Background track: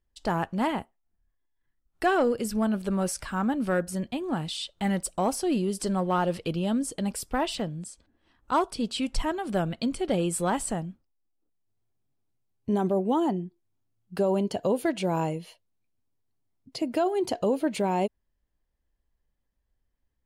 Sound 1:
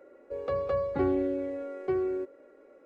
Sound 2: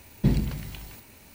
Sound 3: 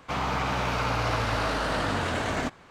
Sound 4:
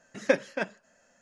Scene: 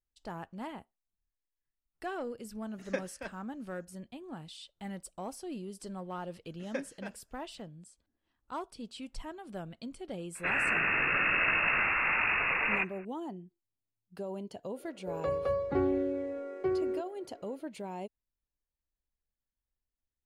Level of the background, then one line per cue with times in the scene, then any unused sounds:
background track -14.5 dB
2.64 s: add 4 -11.5 dB
6.45 s: add 4 -14 dB
10.35 s: add 3 -1.5 dB + frequency inversion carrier 2.7 kHz
14.76 s: add 1 -2 dB
not used: 2

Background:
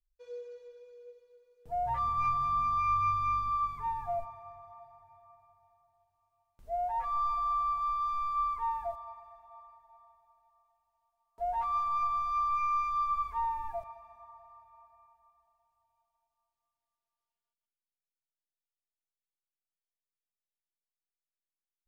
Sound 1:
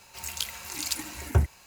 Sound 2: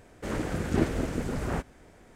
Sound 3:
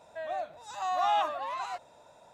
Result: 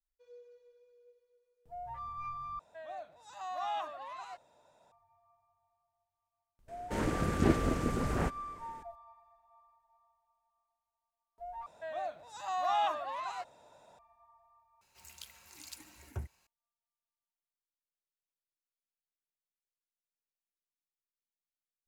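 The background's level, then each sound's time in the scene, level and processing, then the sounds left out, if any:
background -11.5 dB
2.59 s: replace with 3 -9.5 dB
6.68 s: add 2 -1.5 dB
11.66 s: replace with 3 -3.5 dB
14.81 s: replace with 1 -18 dB

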